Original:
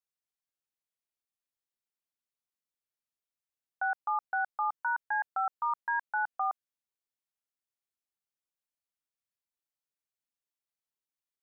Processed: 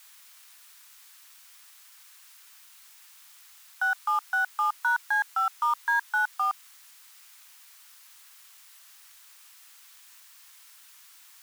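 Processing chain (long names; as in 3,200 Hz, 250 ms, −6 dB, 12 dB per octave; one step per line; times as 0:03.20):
in parallel at −9 dB: comparator with hysteresis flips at −37.5 dBFS
on the sum: bit-depth reduction 10 bits, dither triangular
high-pass filter 1,000 Hz 24 dB per octave
level +7 dB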